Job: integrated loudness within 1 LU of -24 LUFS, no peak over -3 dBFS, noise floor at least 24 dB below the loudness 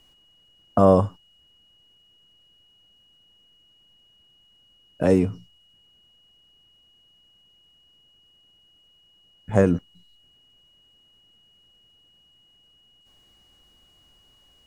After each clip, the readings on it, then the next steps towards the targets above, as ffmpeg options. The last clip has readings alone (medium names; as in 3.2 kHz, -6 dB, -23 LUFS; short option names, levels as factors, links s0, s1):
steady tone 2.9 kHz; tone level -57 dBFS; loudness -21.5 LUFS; peak level -3.0 dBFS; loudness target -24.0 LUFS
-> -af "bandreject=f=2900:w=30"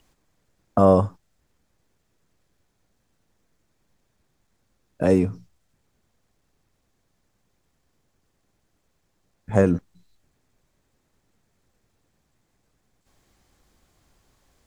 steady tone not found; loudness -21.5 LUFS; peak level -3.0 dBFS; loudness target -24.0 LUFS
-> -af "volume=0.75"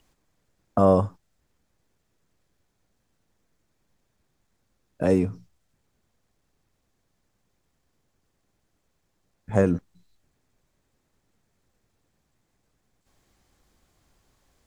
loudness -24.0 LUFS; peak level -5.5 dBFS; noise floor -74 dBFS